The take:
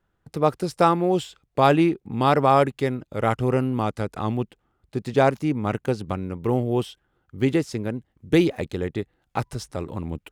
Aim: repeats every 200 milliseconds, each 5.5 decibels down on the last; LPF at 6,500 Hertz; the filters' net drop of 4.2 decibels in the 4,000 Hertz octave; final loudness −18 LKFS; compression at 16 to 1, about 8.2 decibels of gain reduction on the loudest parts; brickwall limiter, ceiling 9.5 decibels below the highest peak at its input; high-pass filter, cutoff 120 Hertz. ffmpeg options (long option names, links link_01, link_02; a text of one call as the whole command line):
ffmpeg -i in.wav -af "highpass=120,lowpass=6500,equalizer=frequency=4000:width_type=o:gain=-5,acompressor=threshold=-20dB:ratio=16,alimiter=limit=-19dB:level=0:latency=1,aecho=1:1:200|400|600|800|1000|1200|1400:0.531|0.281|0.149|0.079|0.0419|0.0222|0.0118,volume=13dB" out.wav